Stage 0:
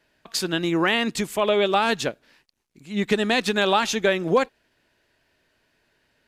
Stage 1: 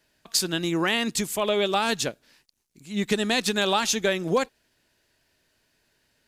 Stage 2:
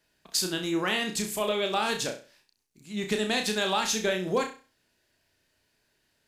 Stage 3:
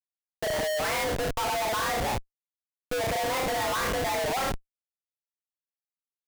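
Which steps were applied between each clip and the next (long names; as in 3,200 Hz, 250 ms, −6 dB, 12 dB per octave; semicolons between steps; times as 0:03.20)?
bass and treble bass +3 dB, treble +10 dB; level −4 dB
flutter between parallel walls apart 5.6 metres, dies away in 0.35 s; level −4.5 dB
single-sideband voice off tune +280 Hz 200–2,200 Hz; gate on every frequency bin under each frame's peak −20 dB strong; comparator with hysteresis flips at −40 dBFS; level +5 dB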